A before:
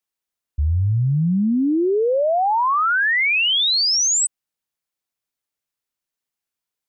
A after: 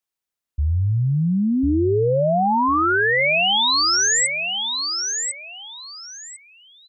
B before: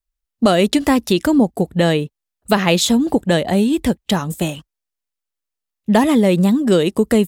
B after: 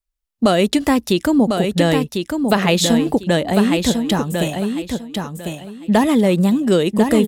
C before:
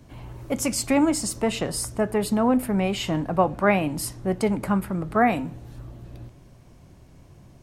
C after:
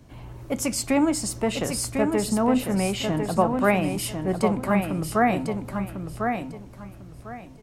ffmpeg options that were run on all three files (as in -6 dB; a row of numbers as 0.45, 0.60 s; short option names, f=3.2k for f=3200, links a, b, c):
-af "aecho=1:1:1049|2098|3147:0.531|0.122|0.0281,volume=-1dB"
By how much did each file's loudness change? -1.0, -1.0, -0.5 LU